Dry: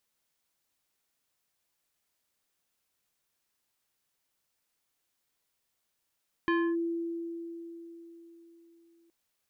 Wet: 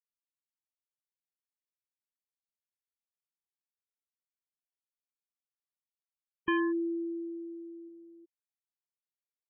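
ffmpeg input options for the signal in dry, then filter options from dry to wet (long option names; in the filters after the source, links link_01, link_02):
-f lavfi -i "aevalsrc='0.0708*pow(10,-3*t/4)*sin(2*PI*336*t+1*clip(1-t/0.28,0,1)*sin(2*PI*4.12*336*t))':duration=2.62:sample_rate=44100"
-af "aemphasis=mode=production:type=cd,afftfilt=real='re*gte(hypot(re,im),0.0316)':imag='im*gte(hypot(re,im),0.0316)':win_size=1024:overlap=0.75"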